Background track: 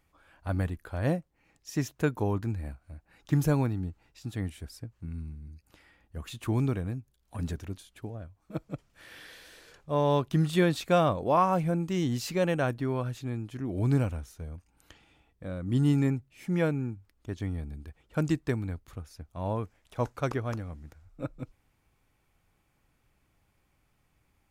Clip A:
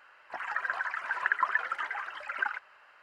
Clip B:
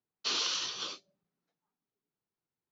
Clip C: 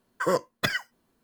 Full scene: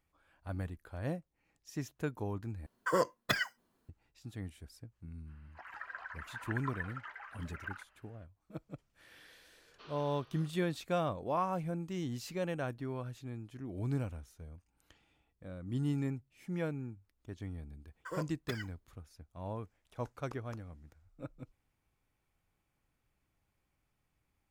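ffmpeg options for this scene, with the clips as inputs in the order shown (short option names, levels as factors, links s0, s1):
-filter_complex "[3:a]asplit=2[s0][s1];[0:a]volume=0.335[s2];[s0]equalizer=f=1100:t=o:w=1.4:g=2[s3];[1:a]lowpass=7100[s4];[2:a]lowpass=1700[s5];[s2]asplit=2[s6][s7];[s6]atrim=end=2.664[s8];[s3]atrim=end=1.23,asetpts=PTS-STARTPTS,volume=0.501[s9];[s7]atrim=start=3.886[s10];[s4]atrim=end=3.02,asetpts=PTS-STARTPTS,volume=0.224,afade=t=in:d=0.05,afade=t=out:st=2.97:d=0.05,adelay=231525S[s11];[s5]atrim=end=2.71,asetpts=PTS-STARTPTS,volume=0.2,afade=t=in:d=0.004:c=hsin,afade=t=out:st=2.706:d=0.004:c=hsin,adelay=420714S[s12];[s1]atrim=end=1.23,asetpts=PTS-STARTPTS,volume=0.15,afade=t=in:d=0.004:c=hsin,afade=t=out:st=1.226:d=0.004:c=hsin,adelay=17850[s13];[s8][s9]acrossfade=d=0.004:c1=hsin:c2=hsin[s14];[s14][s10]acrossfade=d=0.004:c1=hsin:c2=hsin[s15];[s15][s11][s12][s13]amix=inputs=4:normalize=0"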